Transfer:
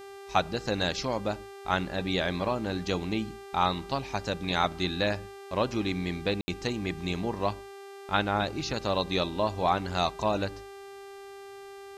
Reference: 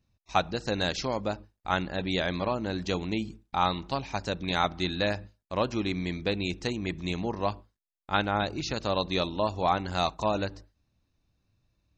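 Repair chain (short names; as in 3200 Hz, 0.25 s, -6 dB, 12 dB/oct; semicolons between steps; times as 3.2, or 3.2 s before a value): de-hum 395.7 Hz, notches 34; room tone fill 6.41–6.48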